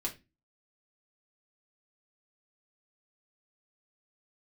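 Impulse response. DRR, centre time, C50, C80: −2.0 dB, 13 ms, 14.5 dB, 21.0 dB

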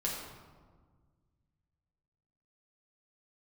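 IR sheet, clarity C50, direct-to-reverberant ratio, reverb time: 1.5 dB, −4.5 dB, 1.6 s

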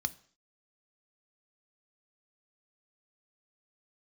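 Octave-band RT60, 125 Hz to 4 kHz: 0.45, 0.50, 0.50, 0.50, 0.55, 0.55 seconds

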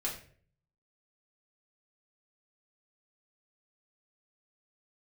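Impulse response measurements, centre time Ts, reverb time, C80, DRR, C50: 25 ms, 0.50 s, 11.5 dB, −4.5 dB, 7.5 dB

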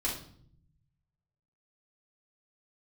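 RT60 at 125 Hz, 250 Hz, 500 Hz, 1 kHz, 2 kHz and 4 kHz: 1.6, 1.1, 0.70, 0.55, 0.45, 0.50 seconds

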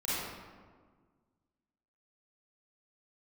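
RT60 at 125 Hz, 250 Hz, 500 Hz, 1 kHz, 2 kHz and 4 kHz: 2.0, 2.0, 1.7, 1.5, 1.2, 0.85 seconds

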